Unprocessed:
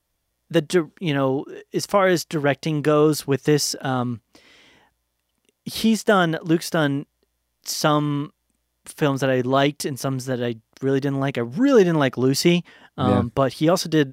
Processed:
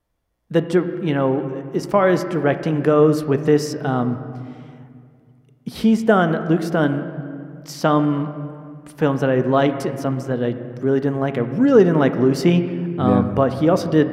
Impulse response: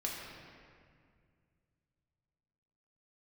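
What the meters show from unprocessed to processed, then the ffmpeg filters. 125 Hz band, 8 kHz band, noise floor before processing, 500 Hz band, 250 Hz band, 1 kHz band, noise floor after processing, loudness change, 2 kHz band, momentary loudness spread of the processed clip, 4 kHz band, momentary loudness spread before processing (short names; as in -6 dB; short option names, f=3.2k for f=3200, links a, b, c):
+2.5 dB, -9.0 dB, -74 dBFS, +3.0 dB, +3.5 dB, +1.5 dB, -54 dBFS, +2.5 dB, -1.0 dB, 14 LU, -7.0 dB, 11 LU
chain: -filter_complex "[0:a]highshelf=f=2.7k:g=-10,asplit=2[a][b];[1:a]atrim=start_sample=2205,lowpass=2.5k[c];[b][c]afir=irnorm=-1:irlink=0,volume=-7dB[d];[a][d]amix=inputs=2:normalize=0"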